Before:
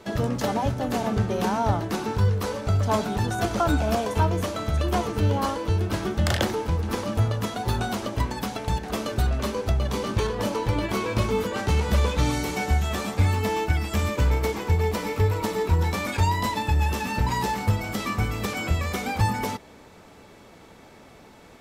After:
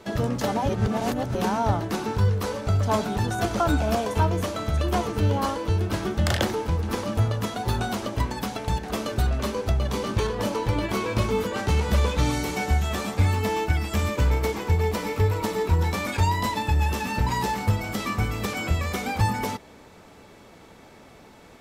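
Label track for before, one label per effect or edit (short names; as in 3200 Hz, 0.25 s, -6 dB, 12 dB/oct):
0.690000	1.350000	reverse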